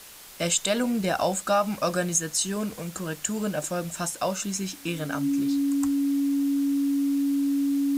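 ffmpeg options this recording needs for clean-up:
-af "bandreject=f=280:w=30,afwtdn=0.0056"

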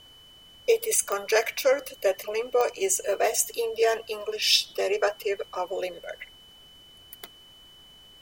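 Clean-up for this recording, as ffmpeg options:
-af "adeclick=t=4,bandreject=f=3000:w=30,agate=range=0.0891:threshold=0.00631"

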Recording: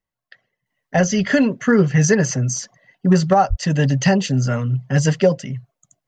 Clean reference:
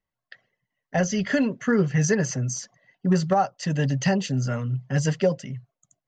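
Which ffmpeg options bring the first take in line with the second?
-filter_complex "[0:a]asplit=3[s0][s1][s2];[s0]afade=t=out:st=3.49:d=0.02[s3];[s1]highpass=f=140:w=0.5412,highpass=f=140:w=1.3066,afade=t=in:st=3.49:d=0.02,afade=t=out:st=3.61:d=0.02[s4];[s2]afade=t=in:st=3.61:d=0.02[s5];[s3][s4][s5]amix=inputs=3:normalize=0,asetnsamples=n=441:p=0,asendcmd='0.66 volume volume -6.5dB',volume=1"

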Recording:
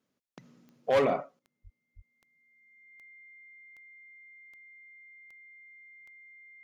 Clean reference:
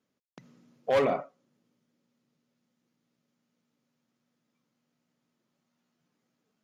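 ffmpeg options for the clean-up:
-filter_complex "[0:a]adeclick=t=4,bandreject=f=2100:w=30,asplit=3[s0][s1][s2];[s0]afade=t=out:st=1.63:d=0.02[s3];[s1]highpass=f=140:w=0.5412,highpass=f=140:w=1.3066,afade=t=in:st=1.63:d=0.02,afade=t=out:st=1.75:d=0.02[s4];[s2]afade=t=in:st=1.75:d=0.02[s5];[s3][s4][s5]amix=inputs=3:normalize=0,asplit=3[s6][s7][s8];[s6]afade=t=out:st=1.95:d=0.02[s9];[s7]highpass=f=140:w=0.5412,highpass=f=140:w=1.3066,afade=t=in:st=1.95:d=0.02,afade=t=out:st=2.07:d=0.02[s10];[s8]afade=t=in:st=2.07:d=0.02[s11];[s9][s10][s11]amix=inputs=3:normalize=0,asetnsamples=n=441:p=0,asendcmd='1.39 volume volume 12dB',volume=1"

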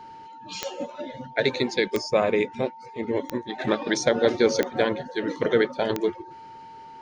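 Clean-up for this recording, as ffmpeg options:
-af "adeclick=t=4,bandreject=f=900:w=30"

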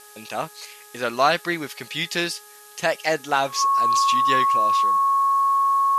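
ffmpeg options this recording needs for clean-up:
-af "adeclick=t=4,bandreject=f=418:t=h:w=4,bandreject=f=836:t=h:w=4,bandreject=f=1254:t=h:w=4,bandreject=f=1672:t=h:w=4,bandreject=f=1100:w=30,afftdn=nr=22:nf=-46"

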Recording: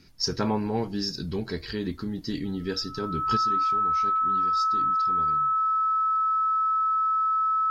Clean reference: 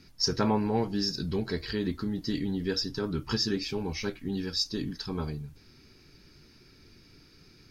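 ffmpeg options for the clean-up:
-af "bandreject=f=1300:w=30,asetnsamples=n=441:p=0,asendcmd='3.37 volume volume 8.5dB',volume=1"

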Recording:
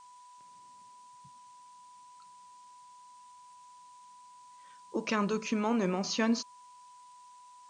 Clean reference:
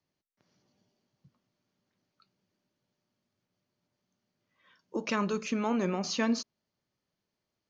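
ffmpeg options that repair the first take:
-af "bandreject=f=990:w=30,afftdn=nr=30:nf=-55"

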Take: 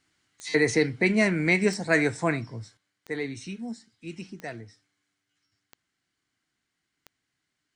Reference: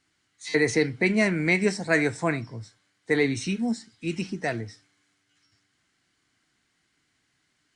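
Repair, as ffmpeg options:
-af "adeclick=t=4,asetnsamples=n=441:p=0,asendcmd='2.77 volume volume 9dB',volume=1"

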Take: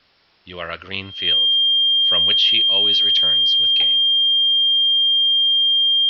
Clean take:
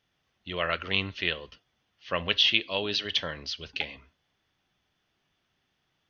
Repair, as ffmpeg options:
-af "bandreject=f=3200:w=30,agate=range=0.0891:threshold=0.0398"

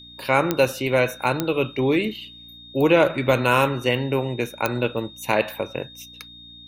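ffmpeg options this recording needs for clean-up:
-af "adeclick=t=4,bandreject=f=59:t=h:w=4,bandreject=f=118:t=h:w=4,bandreject=f=177:t=h:w=4,bandreject=f=236:t=h:w=4,bandreject=f=295:t=h:w=4,bandreject=f=3700:w=30"

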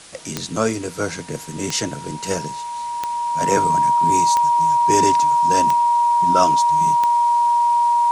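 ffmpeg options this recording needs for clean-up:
-af "adeclick=t=4,bandreject=f=950:w=30,afwtdn=0.01"

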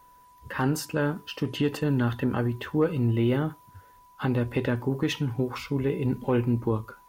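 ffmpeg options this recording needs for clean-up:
-af "bandreject=f=990:w=30"

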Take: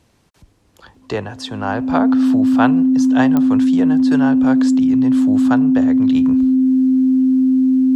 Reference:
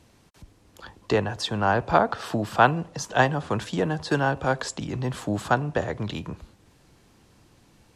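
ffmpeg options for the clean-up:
-af "adeclick=t=4,bandreject=f=260:w=30,asetnsamples=n=441:p=0,asendcmd='6.15 volume volume -4dB',volume=1"

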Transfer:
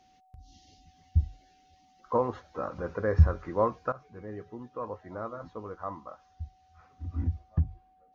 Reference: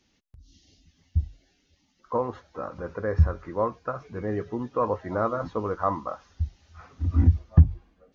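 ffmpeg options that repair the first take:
-af "bandreject=f=750:w=30,asetnsamples=n=441:p=0,asendcmd='3.92 volume volume 11.5dB',volume=1"

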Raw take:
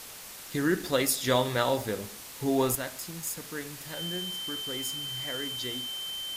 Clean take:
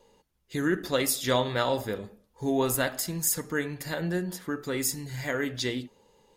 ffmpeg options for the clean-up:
-af "bandreject=f=3100:w=30,afwtdn=0.0071,asetnsamples=n=441:p=0,asendcmd='2.75 volume volume 8.5dB',volume=1"

